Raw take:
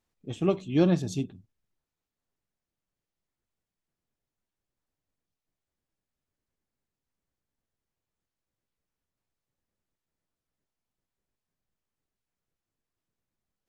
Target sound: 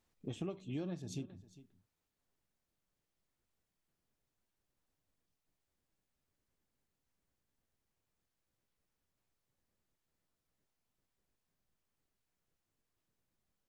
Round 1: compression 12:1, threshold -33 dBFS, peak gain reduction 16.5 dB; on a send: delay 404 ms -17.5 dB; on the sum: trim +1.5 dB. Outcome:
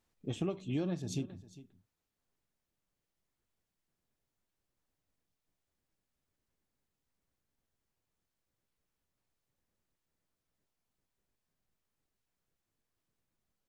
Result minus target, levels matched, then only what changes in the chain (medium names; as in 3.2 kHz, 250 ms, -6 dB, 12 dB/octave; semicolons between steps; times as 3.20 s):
compression: peak gain reduction -6 dB
change: compression 12:1, threshold -39.5 dBFS, peak gain reduction 22.5 dB